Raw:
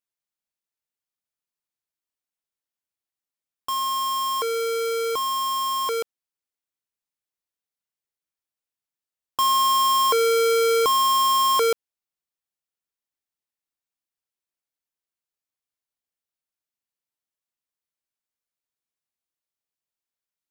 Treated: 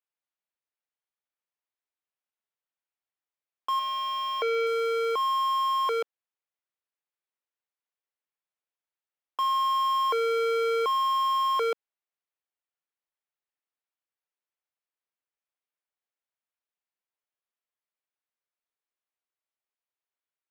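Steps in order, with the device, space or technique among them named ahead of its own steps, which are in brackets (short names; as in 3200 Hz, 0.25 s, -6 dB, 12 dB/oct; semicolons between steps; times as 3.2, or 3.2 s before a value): DJ mixer with the lows and highs turned down (three-band isolator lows -22 dB, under 330 Hz, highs -17 dB, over 3400 Hz; limiter -20.5 dBFS, peak gain reduction 6.5 dB); 3.79–4.67 thirty-one-band EQ 630 Hz +8 dB, 1000 Hz -8 dB, 2500 Hz +7 dB, 8000 Hz -8 dB, 12500 Hz -11 dB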